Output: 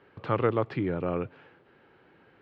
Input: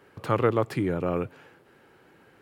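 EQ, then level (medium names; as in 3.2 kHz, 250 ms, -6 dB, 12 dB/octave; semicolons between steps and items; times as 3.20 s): low-pass 3.9 kHz 24 dB/octave; -2.5 dB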